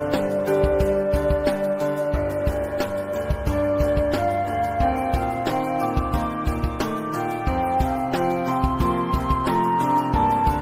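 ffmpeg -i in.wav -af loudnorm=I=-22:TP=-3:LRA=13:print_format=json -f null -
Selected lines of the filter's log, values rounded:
"input_i" : "-22.5",
"input_tp" : "-7.1",
"input_lra" : "2.0",
"input_thresh" : "-32.5",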